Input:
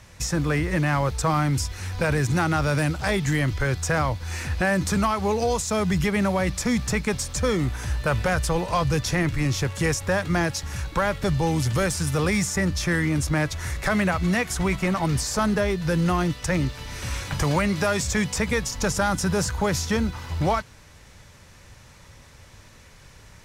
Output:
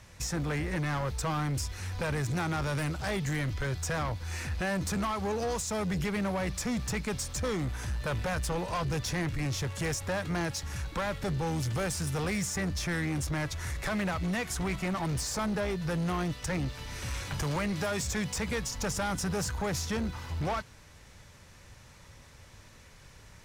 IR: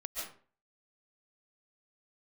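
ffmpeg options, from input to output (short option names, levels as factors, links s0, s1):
-af "asoftclip=type=tanh:threshold=0.075,volume=0.596"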